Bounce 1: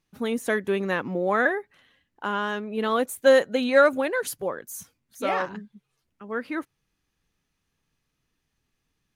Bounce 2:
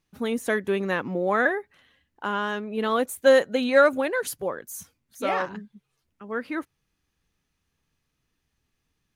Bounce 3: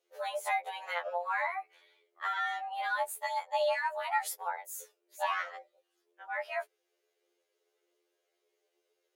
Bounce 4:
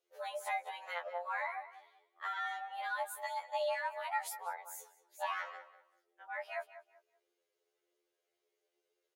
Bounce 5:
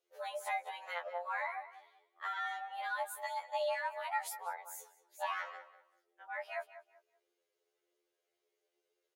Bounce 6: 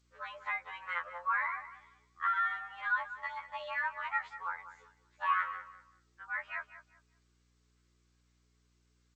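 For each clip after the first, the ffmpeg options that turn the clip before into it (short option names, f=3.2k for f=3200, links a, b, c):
-af "equalizer=f=74:t=o:w=0.32:g=6.5"
-af "acompressor=threshold=-24dB:ratio=8,afreqshift=350,afftfilt=real='re*2*eq(mod(b,4),0)':imag='im*2*eq(mod(b,4),0)':win_size=2048:overlap=0.75,volume=-2dB"
-filter_complex "[0:a]asplit=2[a][b];[b]adelay=192,lowpass=f=3.1k:p=1,volume=-13dB,asplit=2[c][d];[d]adelay=192,lowpass=f=3.1k:p=1,volume=0.26,asplit=2[e][f];[f]adelay=192,lowpass=f=3.1k:p=1,volume=0.26[g];[a][c][e][g]amix=inputs=4:normalize=0,volume=-5.5dB"
-af anull
-af "aeval=exprs='val(0)+0.000282*(sin(2*PI*60*n/s)+sin(2*PI*2*60*n/s)/2+sin(2*PI*3*60*n/s)/3+sin(2*PI*4*60*n/s)/4+sin(2*PI*5*60*n/s)/5)':c=same,firequalizer=gain_entry='entry(360,0);entry(700,-15);entry(1100,11);entry(6000,-21)':delay=0.05:min_phase=1" -ar 16000 -c:a g722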